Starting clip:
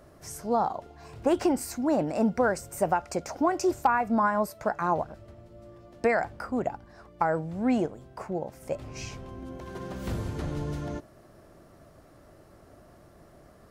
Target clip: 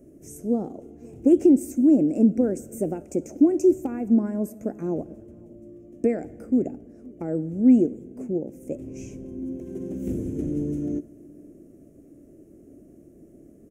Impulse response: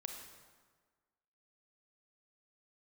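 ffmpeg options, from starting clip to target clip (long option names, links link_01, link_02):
-filter_complex "[0:a]firequalizer=gain_entry='entry(110,0);entry(280,15);entry(950,-23);entry(2400,-8);entry(4300,-22);entry(6300,0)':delay=0.05:min_phase=1,asplit=2[link_01][link_02];[link_02]adelay=519,volume=-25dB,highshelf=frequency=4000:gain=-11.7[link_03];[link_01][link_03]amix=inputs=2:normalize=0,asplit=2[link_04][link_05];[1:a]atrim=start_sample=2205[link_06];[link_05][link_06]afir=irnorm=-1:irlink=0,volume=-10dB[link_07];[link_04][link_07]amix=inputs=2:normalize=0,volume=-4dB"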